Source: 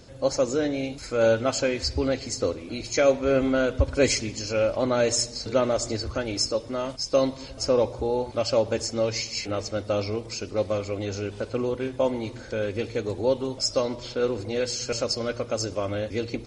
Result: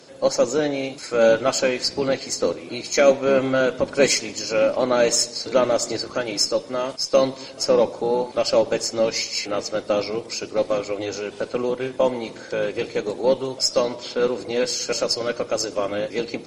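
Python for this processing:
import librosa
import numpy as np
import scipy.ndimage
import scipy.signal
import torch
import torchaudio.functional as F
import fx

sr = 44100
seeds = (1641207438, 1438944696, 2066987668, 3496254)

y = fx.octave_divider(x, sr, octaves=1, level_db=2.0)
y = scipy.signal.sosfilt(scipy.signal.butter(2, 340.0, 'highpass', fs=sr, output='sos'), y)
y = fx.cheby_harmonics(y, sr, harmonics=(8,), levels_db=(-36,), full_scale_db=-8.5)
y = y * librosa.db_to_amplitude(5.0)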